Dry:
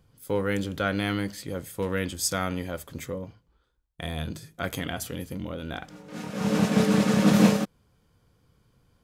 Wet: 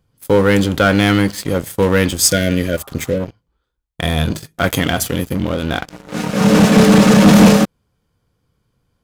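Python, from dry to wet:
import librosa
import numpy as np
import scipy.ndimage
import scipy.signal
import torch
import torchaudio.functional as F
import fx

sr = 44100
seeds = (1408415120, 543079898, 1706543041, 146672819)

y = fx.leveller(x, sr, passes=3)
y = fx.spec_repair(y, sr, seeds[0], start_s=2.29, length_s=0.89, low_hz=680.0, high_hz=1400.0, source='before')
y = y * librosa.db_to_amplitude(4.0)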